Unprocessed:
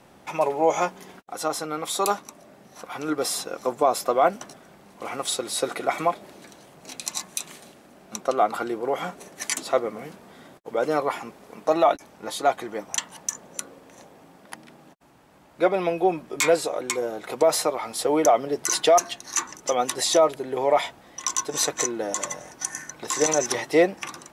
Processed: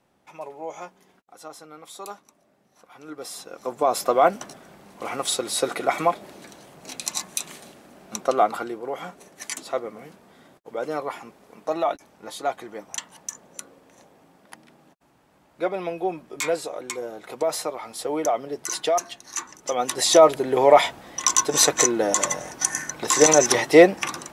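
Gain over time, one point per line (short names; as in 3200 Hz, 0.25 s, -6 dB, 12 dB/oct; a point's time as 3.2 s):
2.96 s -14 dB
3.55 s -6.5 dB
4.01 s +2 dB
8.4 s +2 dB
8.8 s -5 dB
19.53 s -5 dB
20.3 s +6.5 dB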